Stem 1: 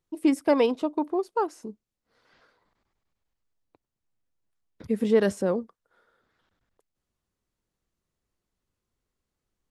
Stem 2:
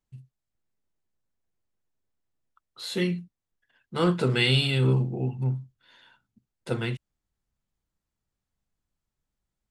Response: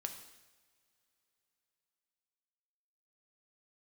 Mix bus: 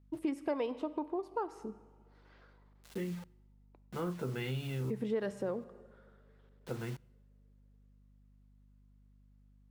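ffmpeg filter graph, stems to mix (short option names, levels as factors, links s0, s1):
-filter_complex "[0:a]bass=f=250:g=-4,treble=f=4000:g=-8,aeval=exprs='val(0)+0.001*(sin(2*PI*50*n/s)+sin(2*PI*2*50*n/s)/2+sin(2*PI*3*50*n/s)/3+sin(2*PI*4*50*n/s)/4+sin(2*PI*5*50*n/s)/5)':c=same,volume=0.562,asplit=3[s0][s1][s2];[s1]volume=0.596[s3];[1:a]lowpass=1700,acrusher=bits=6:mix=0:aa=0.000001,volume=0.398,asplit=2[s4][s5];[s5]volume=0.106[s6];[s2]apad=whole_len=427931[s7];[s4][s7]sidechaincompress=threshold=0.00708:ratio=4:attack=16:release=909[s8];[2:a]atrim=start_sample=2205[s9];[s3][s6]amix=inputs=2:normalize=0[s10];[s10][s9]afir=irnorm=-1:irlink=0[s11];[s0][s8][s11]amix=inputs=3:normalize=0,acompressor=threshold=0.0158:ratio=2.5"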